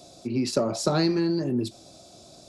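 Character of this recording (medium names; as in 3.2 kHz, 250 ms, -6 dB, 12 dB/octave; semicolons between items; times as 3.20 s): noise floor -51 dBFS; spectral tilt -5.5 dB/octave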